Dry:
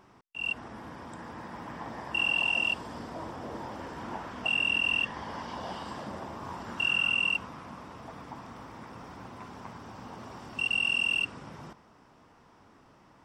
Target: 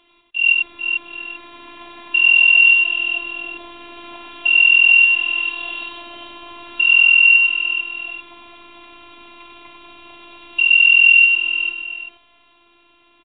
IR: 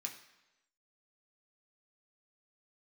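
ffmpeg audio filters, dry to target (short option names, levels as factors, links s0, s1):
-af "alimiter=limit=0.0708:level=0:latency=1:release=132,afftfilt=real='hypot(re,im)*cos(PI*b)':imag='0':win_size=512:overlap=0.75,aexciter=amount=13:drive=2.1:freq=2400,aecho=1:1:95|444|692|791|837:0.708|0.562|0.119|0.112|0.1,volume=1.12" -ar 8000 -c:a pcm_mulaw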